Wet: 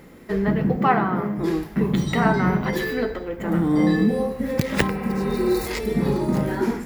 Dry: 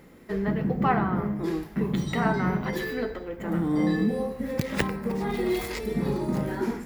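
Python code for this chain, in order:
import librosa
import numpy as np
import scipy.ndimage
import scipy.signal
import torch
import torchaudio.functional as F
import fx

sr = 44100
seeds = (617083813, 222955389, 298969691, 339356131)

y = fx.bessel_highpass(x, sr, hz=200.0, order=2, at=(0.77, 1.38))
y = fx.spec_repair(y, sr, seeds[0], start_s=4.98, length_s=0.66, low_hz=440.0, high_hz=3600.0, source='before')
y = y * librosa.db_to_amplitude(5.5)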